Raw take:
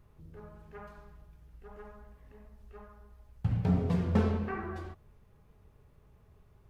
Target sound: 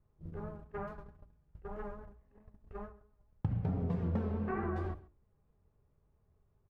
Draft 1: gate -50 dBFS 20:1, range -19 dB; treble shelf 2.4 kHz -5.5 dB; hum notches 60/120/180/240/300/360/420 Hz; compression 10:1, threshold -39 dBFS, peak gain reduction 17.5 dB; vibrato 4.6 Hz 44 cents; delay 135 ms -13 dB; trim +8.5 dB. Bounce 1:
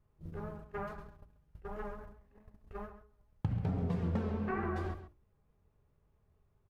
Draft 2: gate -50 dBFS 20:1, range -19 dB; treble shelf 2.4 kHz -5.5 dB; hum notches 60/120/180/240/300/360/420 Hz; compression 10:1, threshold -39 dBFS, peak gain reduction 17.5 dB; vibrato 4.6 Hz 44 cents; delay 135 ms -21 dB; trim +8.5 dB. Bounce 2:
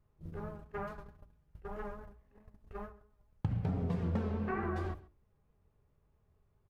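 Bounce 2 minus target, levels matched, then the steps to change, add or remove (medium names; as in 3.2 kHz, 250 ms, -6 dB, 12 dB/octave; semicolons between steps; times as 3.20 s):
2 kHz band +3.0 dB
change: treble shelf 2.4 kHz -16 dB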